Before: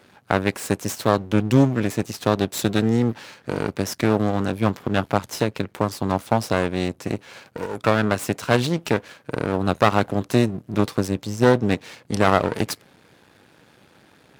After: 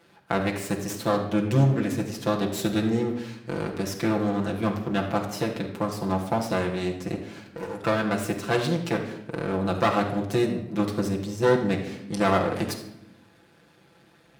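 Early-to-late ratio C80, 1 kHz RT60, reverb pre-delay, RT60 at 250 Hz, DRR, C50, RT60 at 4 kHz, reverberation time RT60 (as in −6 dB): 9.5 dB, 0.70 s, 6 ms, 1.4 s, −1.0 dB, 7.0 dB, 0.65 s, 0.85 s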